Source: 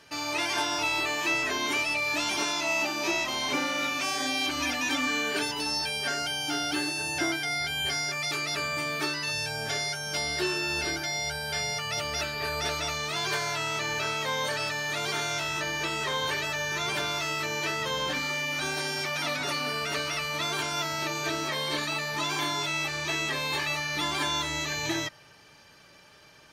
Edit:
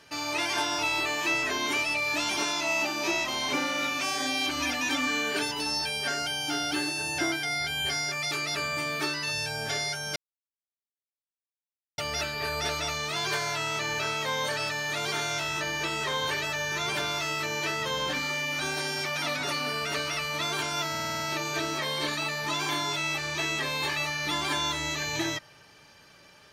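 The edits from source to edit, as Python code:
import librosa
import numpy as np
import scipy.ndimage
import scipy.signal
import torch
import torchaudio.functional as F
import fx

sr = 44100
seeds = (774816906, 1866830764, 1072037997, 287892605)

y = fx.edit(x, sr, fx.silence(start_s=10.16, length_s=1.82),
    fx.stutter(start_s=20.9, slice_s=0.05, count=7), tone=tone)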